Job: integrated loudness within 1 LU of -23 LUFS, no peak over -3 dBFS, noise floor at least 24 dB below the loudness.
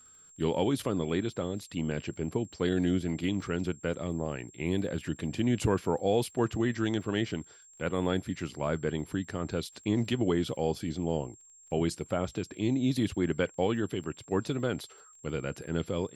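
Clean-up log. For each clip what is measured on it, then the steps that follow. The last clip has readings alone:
ticks 30/s; steady tone 7500 Hz; tone level -54 dBFS; loudness -31.5 LUFS; peak -14.0 dBFS; loudness target -23.0 LUFS
-> de-click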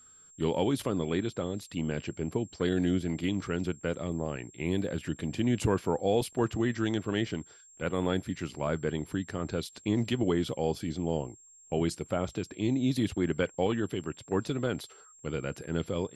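ticks 0.062/s; steady tone 7500 Hz; tone level -54 dBFS
-> notch 7500 Hz, Q 30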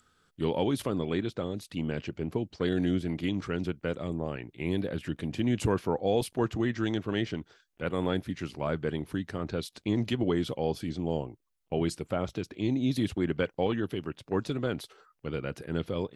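steady tone none; loudness -31.5 LUFS; peak -14.0 dBFS; loudness target -23.0 LUFS
-> gain +8.5 dB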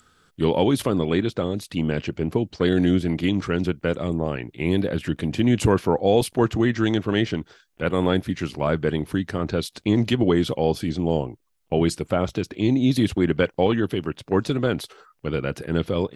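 loudness -23.0 LUFS; peak -5.5 dBFS; noise floor -66 dBFS

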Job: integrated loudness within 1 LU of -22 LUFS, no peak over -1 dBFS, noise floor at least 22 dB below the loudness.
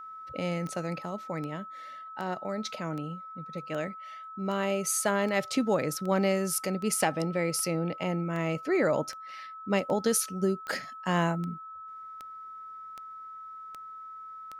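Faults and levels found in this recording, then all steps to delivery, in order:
clicks 19; steady tone 1300 Hz; tone level -41 dBFS; loudness -30.5 LUFS; peak -12.5 dBFS; loudness target -22.0 LUFS
-> de-click; notch 1300 Hz, Q 30; gain +8.5 dB

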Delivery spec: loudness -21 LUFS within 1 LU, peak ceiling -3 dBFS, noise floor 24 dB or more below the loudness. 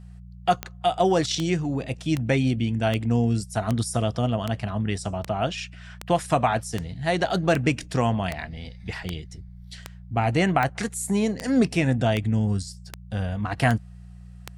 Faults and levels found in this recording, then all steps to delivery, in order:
clicks 19; hum 60 Hz; harmonics up to 180 Hz; hum level -41 dBFS; loudness -25.0 LUFS; peak -9.0 dBFS; loudness target -21.0 LUFS
-> de-click; de-hum 60 Hz, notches 3; gain +4 dB

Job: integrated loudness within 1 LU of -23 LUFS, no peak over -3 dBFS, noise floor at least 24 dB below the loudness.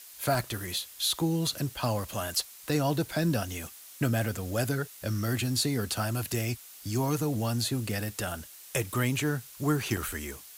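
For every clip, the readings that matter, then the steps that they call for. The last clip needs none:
dropouts 4; longest dropout 1.5 ms; noise floor -49 dBFS; noise floor target -55 dBFS; loudness -30.5 LUFS; peak -14.5 dBFS; loudness target -23.0 LUFS
-> interpolate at 0.35/1.47/5.37/9.97, 1.5 ms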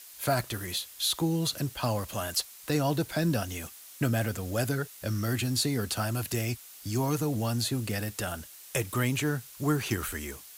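dropouts 0; noise floor -49 dBFS; noise floor target -55 dBFS
-> denoiser 6 dB, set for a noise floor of -49 dBFS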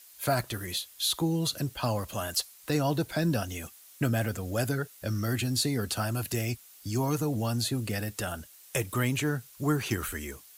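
noise floor -54 dBFS; noise floor target -55 dBFS
-> denoiser 6 dB, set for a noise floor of -54 dBFS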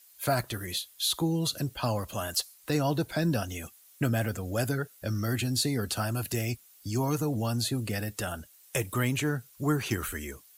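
noise floor -57 dBFS; loudness -30.5 LUFS; peak -15.0 dBFS; loudness target -23.0 LUFS
-> gain +7.5 dB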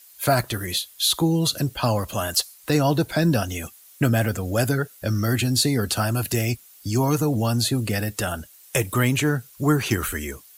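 loudness -23.0 LUFS; peak -7.5 dBFS; noise floor -50 dBFS

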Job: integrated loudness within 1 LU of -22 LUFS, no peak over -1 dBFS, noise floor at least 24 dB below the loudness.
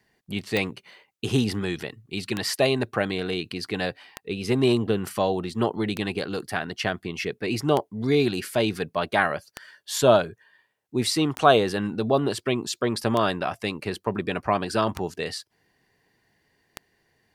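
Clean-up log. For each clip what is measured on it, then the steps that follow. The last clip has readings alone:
clicks 10; loudness -25.5 LUFS; peak -2.5 dBFS; loudness target -22.0 LUFS
-> de-click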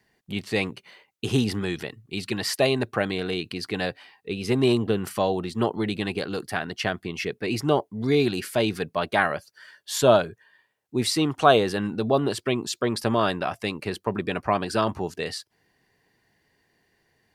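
clicks 0; loudness -25.5 LUFS; peak -2.5 dBFS; loudness target -22.0 LUFS
-> gain +3.5 dB; limiter -1 dBFS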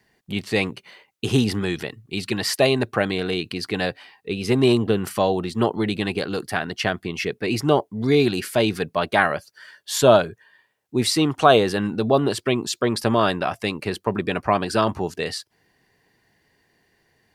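loudness -22.0 LUFS; peak -1.0 dBFS; noise floor -68 dBFS

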